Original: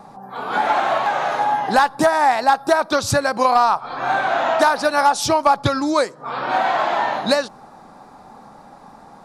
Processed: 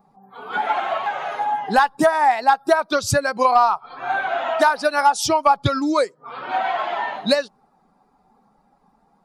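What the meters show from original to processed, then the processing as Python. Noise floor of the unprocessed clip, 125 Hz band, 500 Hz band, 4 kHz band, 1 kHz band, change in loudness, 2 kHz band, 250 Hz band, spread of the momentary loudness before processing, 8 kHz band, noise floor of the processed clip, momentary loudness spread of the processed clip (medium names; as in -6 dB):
-44 dBFS, -0.5 dB, -1.5 dB, -2.0 dB, -1.5 dB, -1.5 dB, -1.5 dB, -1.5 dB, 6 LU, -1.0 dB, -62 dBFS, 9 LU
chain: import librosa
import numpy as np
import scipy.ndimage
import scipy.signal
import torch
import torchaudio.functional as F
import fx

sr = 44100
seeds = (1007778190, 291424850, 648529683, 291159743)

y = fx.bin_expand(x, sr, power=1.5)
y = y * librosa.db_to_amplitude(1.5)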